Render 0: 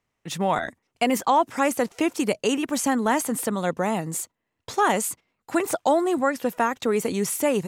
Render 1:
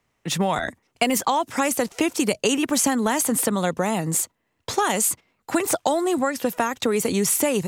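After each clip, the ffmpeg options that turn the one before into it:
ffmpeg -i in.wav -filter_complex "[0:a]acrossover=split=120|3000[link_01][link_02][link_03];[link_02]acompressor=threshold=-26dB:ratio=6[link_04];[link_01][link_04][link_03]amix=inputs=3:normalize=0,volume=7dB" out.wav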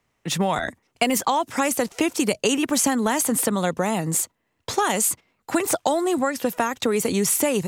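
ffmpeg -i in.wav -af anull out.wav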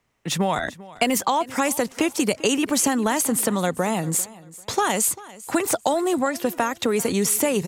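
ffmpeg -i in.wav -af "aecho=1:1:394|788:0.106|0.0275" out.wav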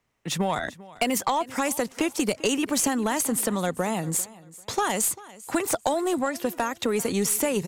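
ffmpeg -i in.wav -af "aeval=exprs='0.596*(cos(1*acos(clip(val(0)/0.596,-1,1)))-cos(1*PI/2))+0.119*(cos(4*acos(clip(val(0)/0.596,-1,1)))-cos(4*PI/2))+0.0531*(cos(6*acos(clip(val(0)/0.596,-1,1)))-cos(6*PI/2))+0.0119*(cos(7*acos(clip(val(0)/0.596,-1,1)))-cos(7*PI/2))':channel_layout=same,volume=-2.5dB" out.wav

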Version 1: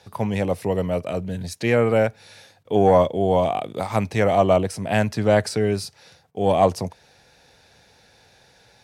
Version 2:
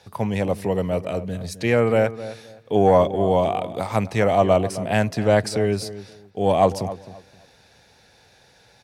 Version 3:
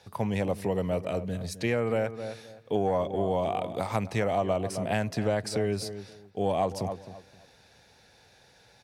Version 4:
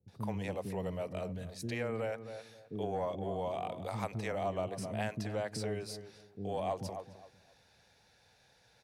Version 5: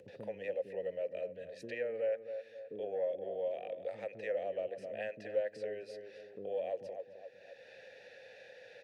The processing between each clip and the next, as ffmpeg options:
ffmpeg -i in.wav -filter_complex "[0:a]asplit=2[link_01][link_02];[link_02]adelay=262,lowpass=frequency=1800:poles=1,volume=-14dB,asplit=2[link_03][link_04];[link_04]adelay=262,lowpass=frequency=1800:poles=1,volume=0.24,asplit=2[link_05][link_06];[link_06]adelay=262,lowpass=frequency=1800:poles=1,volume=0.24[link_07];[link_01][link_03][link_05][link_07]amix=inputs=4:normalize=0" out.wav
ffmpeg -i in.wav -af "acompressor=threshold=-19dB:ratio=6,volume=-4dB" out.wav
ffmpeg -i in.wav -filter_complex "[0:a]acrossover=split=340[link_01][link_02];[link_02]adelay=80[link_03];[link_01][link_03]amix=inputs=2:normalize=0,volume=-7.5dB" out.wav
ffmpeg -i in.wav -filter_complex "[0:a]asplit=3[link_01][link_02][link_03];[link_01]bandpass=frequency=530:width_type=q:width=8,volume=0dB[link_04];[link_02]bandpass=frequency=1840:width_type=q:width=8,volume=-6dB[link_05];[link_03]bandpass=frequency=2480:width_type=q:width=8,volume=-9dB[link_06];[link_04][link_05][link_06]amix=inputs=3:normalize=0,acompressor=mode=upward:threshold=-46dB:ratio=2.5,volume=7dB" out.wav

